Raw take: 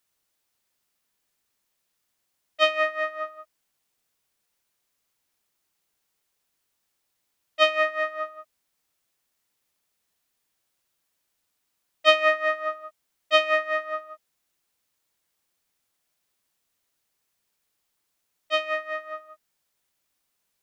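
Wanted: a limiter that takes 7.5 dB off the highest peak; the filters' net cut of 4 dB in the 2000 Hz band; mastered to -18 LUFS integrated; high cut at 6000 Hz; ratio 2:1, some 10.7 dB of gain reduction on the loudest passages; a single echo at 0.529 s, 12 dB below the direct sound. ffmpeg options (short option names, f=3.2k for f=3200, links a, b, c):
-af "lowpass=6k,equalizer=f=2k:t=o:g=-4.5,acompressor=threshold=-35dB:ratio=2,alimiter=level_in=0.5dB:limit=-24dB:level=0:latency=1,volume=-0.5dB,aecho=1:1:529:0.251,volume=19.5dB"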